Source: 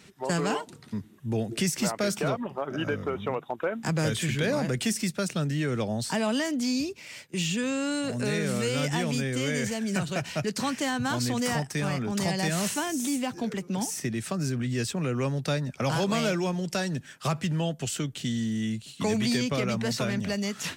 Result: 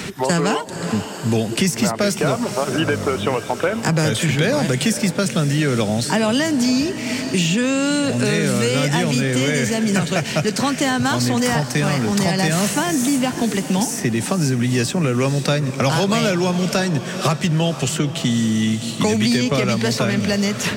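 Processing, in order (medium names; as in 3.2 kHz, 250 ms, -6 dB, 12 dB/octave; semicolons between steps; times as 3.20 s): echo that smears into a reverb 485 ms, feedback 56%, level -14 dB; three bands compressed up and down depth 70%; trim +9 dB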